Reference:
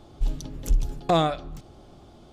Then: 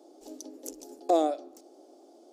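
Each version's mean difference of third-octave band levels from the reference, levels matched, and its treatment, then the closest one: 8.5 dB: elliptic high-pass 290 Hz, stop band 50 dB; high-order bell 1.9 kHz -14.5 dB 2.3 oct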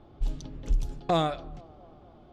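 2.0 dB: level-controlled noise filter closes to 2.4 kHz, open at -16.5 dBFS; on a send: feedback echo behind a band-pass 237 ms, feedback 69%, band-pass 510 Hz, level -23.5 dB; on the sum: trim -4 dB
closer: second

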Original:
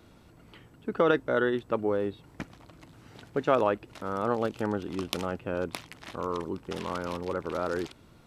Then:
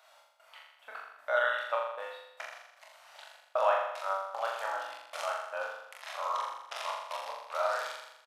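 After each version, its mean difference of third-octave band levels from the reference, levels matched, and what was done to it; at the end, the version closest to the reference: 14.5 dB: elliptic high-pass 610 Hz, stop band 40 dB; trance gate "x.x.x.xx" 76 bpm -60 dB; doubling 26 ms -5 dB; on a send: flutter echo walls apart 7.1 m, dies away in 0.88 s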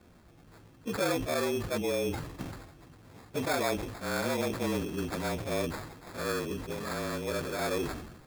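9.0 dB: frequency axis rescaled in octaves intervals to 111%; in parallel at -2.5 dB: compressor with a negative ratio -31 dBFS, ratio -0.5; on the sum: sample-and-hold 15×; decay stretcher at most 58 dB/s; trim -4.5 dB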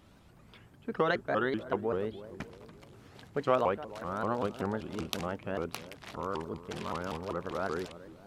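3.0 dB: peaking EQ 310 Hz -7.5 dB 0.28 oct; band-stop 480 Hz, Q 12; filtered feedback delay 297 ms, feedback 57%, low-pass 820 Hz, level -14 dB; vibrato with a chosen wave saw up 5.2 Hz, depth 250 cents; trim -2.5 dB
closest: third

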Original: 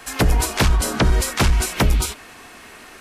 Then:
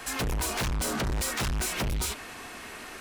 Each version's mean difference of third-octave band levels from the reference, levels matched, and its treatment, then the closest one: 5.5 dB: saturation -27 dBFS, distortion -5 dB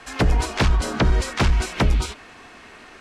3.0 dB: distance through air 80 m; trim -1.5 dB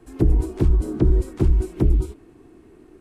13.5 dB: FFT filter 140 Hz 0 dB, 230 Hz -5 dB, 340 Hz +7 dB, 540 Hz -13 dB, 1 kHz -18 dB, 1.7 kHz -24 dB, 4 kHz -26 dB, 6 kHz -27 dB, 8.5 kHz -22 dB, 13 kHz -26 dB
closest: second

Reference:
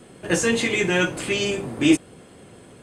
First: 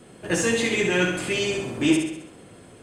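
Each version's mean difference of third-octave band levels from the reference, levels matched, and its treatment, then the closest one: 2.5 dB: flutter echo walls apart 11.4 m, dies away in 0.69 s; in parallel at -9 dB: saturation -18 dBFS, distortion -10 dB; on the sum: trim -4.5 dB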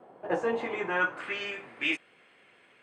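8.5 dB: band-pass sweep 790 Hz -> 2.3 kHz, 0.57–1.75 s; treble shelf 2.9 kHz -10.5 dB; trim +4 dB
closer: first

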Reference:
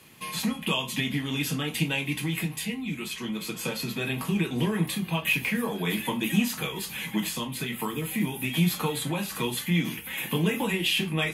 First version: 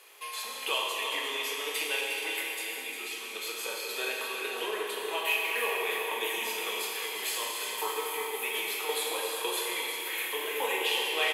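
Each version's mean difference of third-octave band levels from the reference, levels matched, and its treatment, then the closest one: 12.0 dB: tremolo saw down 1.8 Hz, depth 70%; elliptic high-pass 420 Hz, stop band 80 dB; delay 355 ms -8.5 dB; Schroeder reverb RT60 3.1 s, combs from 30 ms, DRR -1.5 dB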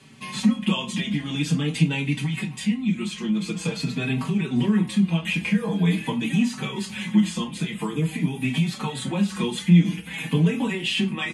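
7.0 dB: steep low-pass 9.3 kHz 36 dB/octave; peaking EQ 190 Hz +12 dB 0.76 oct; in parallel at -2 dB: compression, threshold -23 dBFS, peak gain reduction 15 dB; on the sum: endless flanger 4.7 ms -0.47 Hz; trim -1 dB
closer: second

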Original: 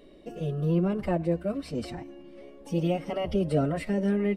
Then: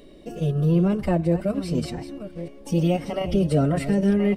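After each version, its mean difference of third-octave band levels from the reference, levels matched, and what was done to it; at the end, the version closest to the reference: 2.5 dB: chunks repeated in reverse 621 ms, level -11.5 dB; tone controls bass +4 dB, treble +6 dB; in parallel at -1 dB: level held to a coarse grid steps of 14 dB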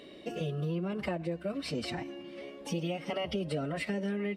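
5.5 dB: high-pass 94 Hz 12 dB/octave; peaking EQ 3.1 kHz +8.5 dB 2.4 oct; compression, threshold -33 dBFS, peak gain reduction 13 dB; trim +2 dB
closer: first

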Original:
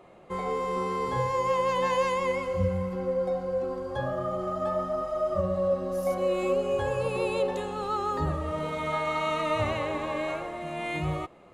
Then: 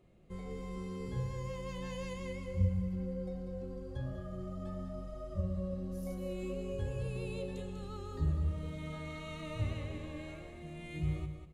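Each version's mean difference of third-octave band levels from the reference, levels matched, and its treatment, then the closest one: 5.0 dB: amplifier tone stack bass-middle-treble 10-0-1; on a send: feedback delay 194 ms, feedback 17%, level -8 dB; on the sum: trim +9.5 dB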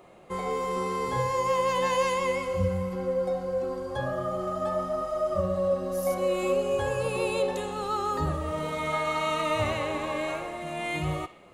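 2.0 dB: treble shelf 5.8 kHz +9.5 dB; on a send: band-passed feedback delay 62 ms, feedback 63%, band-pass 2.7 kHz, level -12 dB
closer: second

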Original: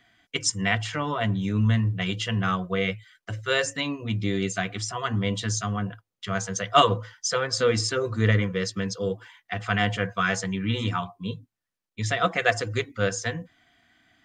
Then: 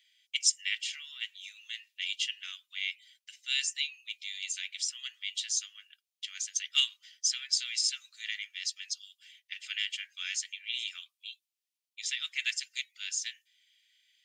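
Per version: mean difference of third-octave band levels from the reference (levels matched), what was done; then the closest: 19.0 dB: steep high-pass 2.4 kHz 36 dB/octave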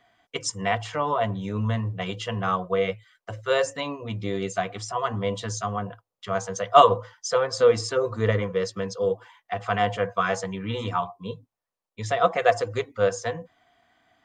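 4.0 dB: high-order bell 710 Hz +10 dB; trim -4.5 dB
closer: second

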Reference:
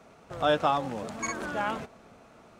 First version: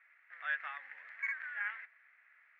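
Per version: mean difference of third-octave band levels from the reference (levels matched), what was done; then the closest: 16.5 dB: Butterworth band-pass 1.9 kHz, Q 3.8; trim +5.5 dB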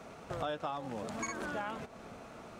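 7.5 dB: compression 5:1, threshold -41 dBFS, peak gain reduction 18.5 dB; trim +4.5 dB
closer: second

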